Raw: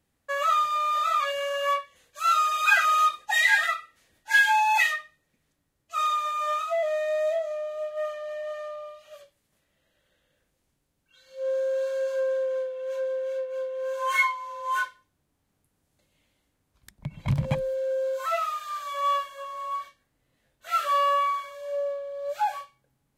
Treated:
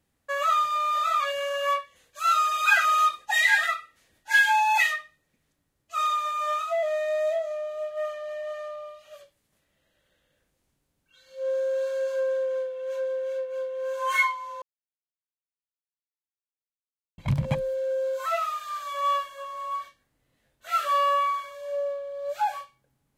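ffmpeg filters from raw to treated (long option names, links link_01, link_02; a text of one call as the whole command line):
ffmpeg -i in.wav -filter_complex "[0:a]asplit=3[link_01][link_02][link_03];[link_01]atrim=end=14.62,asetpts=PTS-STARTPTS,afade=type=out:start_time=14.616:duration=0.004:curve=hsin[link_04];[link_02]atrim=start=14.62:end=17.18,asetpts=PTS-STARTPTS,volume=0[link_05];[link_03]atrim=start=17.18,asetpts=PTS-STARTPTS,afade=type=in:duration=0.004:curve=hsin[link_06];[link_04][link_05][link_06]concat=n=3:v=0:a=1" out.wav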